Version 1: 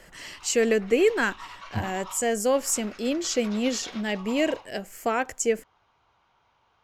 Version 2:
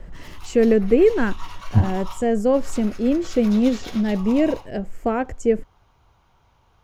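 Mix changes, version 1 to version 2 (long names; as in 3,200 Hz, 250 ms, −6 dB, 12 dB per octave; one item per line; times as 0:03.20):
background: remove head-to-tape spacing loss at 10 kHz 32 dB
master: add spectral tilt −4.5 dB per octave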